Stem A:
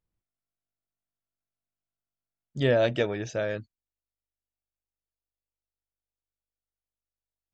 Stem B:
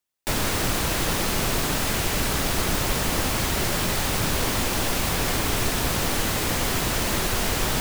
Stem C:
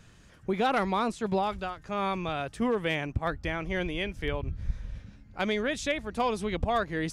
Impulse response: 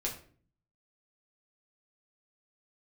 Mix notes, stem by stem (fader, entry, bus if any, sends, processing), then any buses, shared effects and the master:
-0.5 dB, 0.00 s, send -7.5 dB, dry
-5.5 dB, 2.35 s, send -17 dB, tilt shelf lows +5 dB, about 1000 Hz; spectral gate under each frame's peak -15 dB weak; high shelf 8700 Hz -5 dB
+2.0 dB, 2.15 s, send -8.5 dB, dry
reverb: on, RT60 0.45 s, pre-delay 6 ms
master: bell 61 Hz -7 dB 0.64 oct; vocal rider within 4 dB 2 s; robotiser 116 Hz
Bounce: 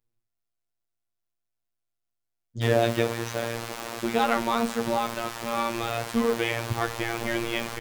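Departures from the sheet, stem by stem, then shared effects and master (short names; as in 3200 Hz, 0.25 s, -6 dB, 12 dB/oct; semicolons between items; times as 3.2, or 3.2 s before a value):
stem C: entry 2.15 s -> 3.55 s; master: missing vocal rider within 4 dB 2 s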